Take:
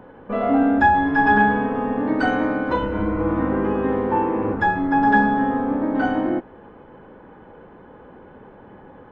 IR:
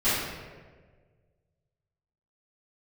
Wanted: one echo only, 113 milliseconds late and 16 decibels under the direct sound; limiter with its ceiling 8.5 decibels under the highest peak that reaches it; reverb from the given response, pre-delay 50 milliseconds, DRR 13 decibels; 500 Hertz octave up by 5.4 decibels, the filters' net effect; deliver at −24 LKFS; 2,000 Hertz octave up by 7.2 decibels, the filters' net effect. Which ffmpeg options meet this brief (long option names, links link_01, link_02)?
-filter_complex "[0:a]equalizer=frequency=500:width_type=o:gain=6,equalizer=frequency=2000:width_type=o:gain=9,alimiter=limit=-8.5dB:level=0:latency=1,aecho=1:1:113:0.158,asplit=2[link_01][link_02];[1:a]atrim=start_sample=2205,adelay=50[link_03];[link_02][link_03]afir=irnorm=-1:irlink=0,volume=-27.5dB[link_04];[link_01][link_04]amix=inputs=2:normalize=0,volume=-6dB"